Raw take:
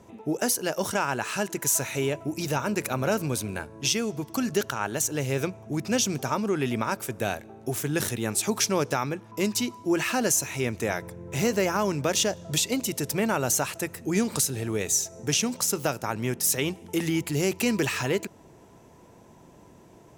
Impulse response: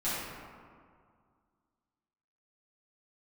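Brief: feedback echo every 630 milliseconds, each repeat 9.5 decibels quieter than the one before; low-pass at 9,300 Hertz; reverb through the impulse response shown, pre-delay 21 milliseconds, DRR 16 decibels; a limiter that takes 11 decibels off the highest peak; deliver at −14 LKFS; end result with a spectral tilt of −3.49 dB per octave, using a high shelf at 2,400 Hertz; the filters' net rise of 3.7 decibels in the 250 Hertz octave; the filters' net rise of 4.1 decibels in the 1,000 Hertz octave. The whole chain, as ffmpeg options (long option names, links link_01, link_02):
-filter_complex "[0:a]lowpass=9300,equalizer=frequency=250:width_type=o:gain=4.5,equalizer=frequency=1000:width_type=o:gain=3.5,highshelf=frequency=2400:gain=8,alimiter=limit=-16.5dB:level=0:latency=1,aecho=1:1:630|1260|1890|2520:0.335|0.111|0.0365|0.012,asplit=2[link_01][link_02];[1:a]atrim=start_sample=2205,adelay=21[link_03];[link_02][link_03]afir=irnorm=-1:irlink=0,volume=-24dB[link_04];[link_01][link_04]amix=inputs=2:normalize=0,volume=13dB"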